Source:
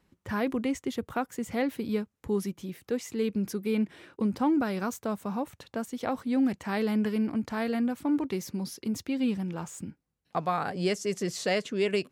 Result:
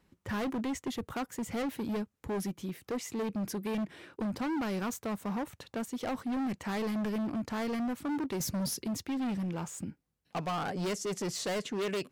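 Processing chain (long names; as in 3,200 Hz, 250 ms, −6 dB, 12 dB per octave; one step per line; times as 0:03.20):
0:08.40–0:08.83: bass and treble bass +13 dB, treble +9 dB
hard clipping −30.5 dBFS, distortion −7 dB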